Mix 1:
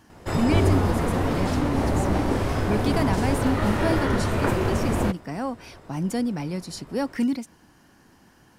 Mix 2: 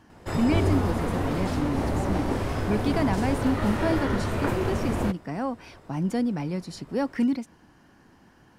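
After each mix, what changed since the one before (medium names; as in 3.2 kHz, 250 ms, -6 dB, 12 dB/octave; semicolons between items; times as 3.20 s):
speech: add treble shelf 5 kHz -10.5 dB; background -3.5 dB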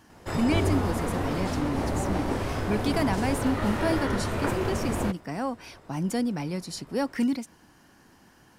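speech: add treble shelf 5 kHz +10.5 dB; master: add bass shelf 370 Hz -2.5 dB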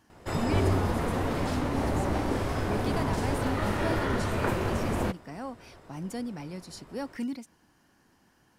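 speech -8.0 dB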